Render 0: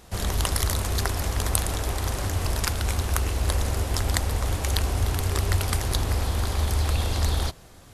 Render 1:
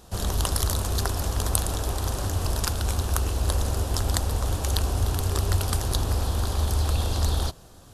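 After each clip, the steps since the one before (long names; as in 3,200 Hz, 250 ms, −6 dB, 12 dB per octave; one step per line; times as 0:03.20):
parametric band 2,100 Hz −10.5 dB 0.51 octaves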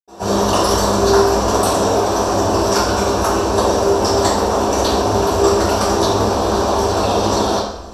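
convolution reverb, pre-delay 76 ms
level +7 dB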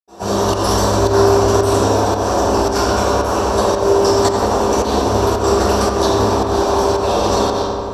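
fake sidechain pumping 112 BPM, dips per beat 1, −21 dB, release 176 ms
feedback echo with a low-pass in the loop 88 ms, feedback 83%, low-pass 4,600 Hz, level −7 dB
level −1 dB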